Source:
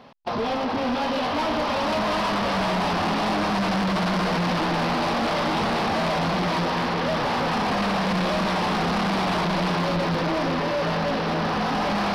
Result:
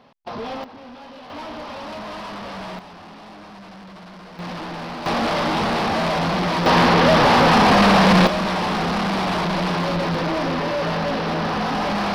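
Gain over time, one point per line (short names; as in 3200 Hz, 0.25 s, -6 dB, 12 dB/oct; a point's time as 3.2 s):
-4.5 dB
from 0.64 s -15.5 dB
from 1.3 s -9 dB
from 2.79 s -17.5 dB
from 4.39 s -7.5 dB
from 5.06 s +2.5 dB
from 6.66 s +10 dB
from 8.27 s +1.5 dB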